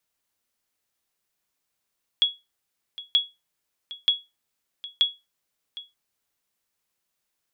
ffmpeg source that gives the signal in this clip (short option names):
-f lavfi -i "aevalsrc='0.266*(sin(2*PI*3350*mod(t,0.93))*exp(-6.91*mod(t,0.93)/0.22)+0.133*sin(2*PI*3350*max(mod(t,0.93)-0.76,0))*exp(-6.91*max(mod(t,0.93)-0.76,0)/0.22))':d=3.72:s=44100"